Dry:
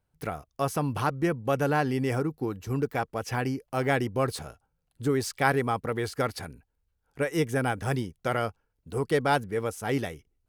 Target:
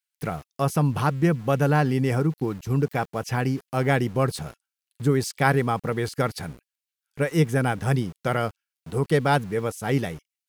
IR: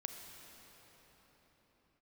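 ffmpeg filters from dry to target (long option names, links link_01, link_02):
-filter_complex "[0:a]equalizer=frequency=160:width_type=o:width=0.63:gain=8.5,acrossover=split=1900[link_01][link_02];[link_01]aeval=exprs='val(0)*gte(abs(val(0)),0.00596)':channel_layout=same[link_03];[link_03][link_02]amix=inputs=2:normalize=0,volume=2.5dB"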